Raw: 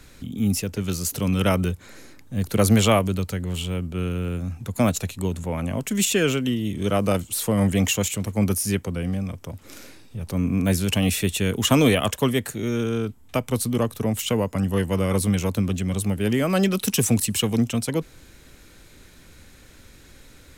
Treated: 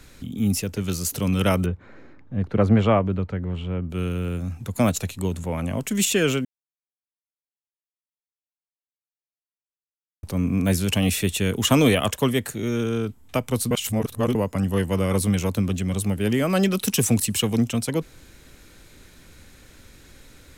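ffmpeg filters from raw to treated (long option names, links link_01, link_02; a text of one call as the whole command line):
ffmpeg -i in.wav -filter_complex "[0:a]asplit=3[link_01][link_02][link_03];[link_01]afade=type=out:start_time=1.65:duration=0.02[link_04];[link_02]lowpass=1700,afade=type=in:start_time=1.65:duration=0.02,afade=type=out:start_time=3.89:duration=0.02[link_05];[link_03]afade=type=in:start_time=3.89:duration=0.02[link_06];[link_04][link_05][link_06]amix=inputs=3:normalize=0,asplit=5[link_07][link_08][link_09][link_10][link_11];[link_07]atrim=end=6.45,asetpts=PTS-STARTPTS,afade=type=out:start_time=6.446:duration=0.004:curve=hsin[link_12];[link_08]atrim=start=6.45:end=10.23,asetpts=PTS-STARTPTS,volume=0[link_13];[link_09]atrim=start=10.23:end=13.712,asetpts=PTS-STARTPTS,afade=type=in:duration=0.004:curve=hsin[link_14];[link_10]atrim=start=13.708:end=14.352,asetpts=PTS-STARTPTS,areverse[link_15];[link_11]atrim=start=14.348[link_16];[link_12][link_13][link_14]concat=n=3:v=0:a=1[link_17];[link_17][link_15]acrossfade=duration=0.004:curve1=hsin:curve2=hsin[link_18];[link_18][link_16]acrossfade=duration=0.004:curve1=hsin:curve2=hsin" out.wav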